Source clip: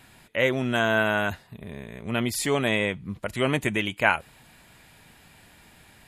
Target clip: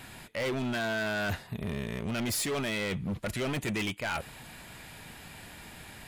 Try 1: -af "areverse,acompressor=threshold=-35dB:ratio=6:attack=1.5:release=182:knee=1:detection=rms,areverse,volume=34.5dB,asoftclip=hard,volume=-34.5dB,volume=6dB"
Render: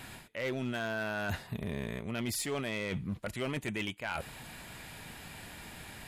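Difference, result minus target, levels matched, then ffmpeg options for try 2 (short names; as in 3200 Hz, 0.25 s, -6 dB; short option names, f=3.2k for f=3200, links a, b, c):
compressor: peak gain reduction +7.5 dB
-af "areverse,acompressor=threshold=-26dB:ratio=6:attack=1.5:release=182:knee=1:detection=rms,areverse,volume=34.5dB,asoftclip=hard,volume=-34.5dB,volume=6dB"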